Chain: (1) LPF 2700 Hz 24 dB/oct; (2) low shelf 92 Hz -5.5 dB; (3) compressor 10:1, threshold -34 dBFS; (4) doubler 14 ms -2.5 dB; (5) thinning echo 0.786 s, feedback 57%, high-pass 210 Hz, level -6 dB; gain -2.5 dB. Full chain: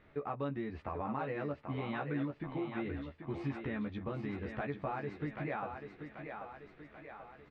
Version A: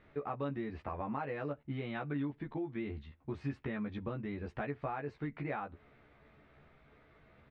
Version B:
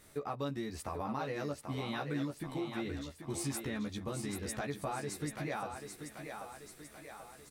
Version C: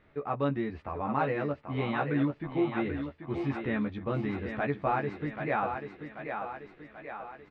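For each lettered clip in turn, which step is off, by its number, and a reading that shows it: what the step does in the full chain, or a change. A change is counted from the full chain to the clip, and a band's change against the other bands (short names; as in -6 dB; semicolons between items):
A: 5, echo-to-direct -4.5 dB to none; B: 1, 4 kHz band +10.0 dB; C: 3, mean gain reduction 4.5 dB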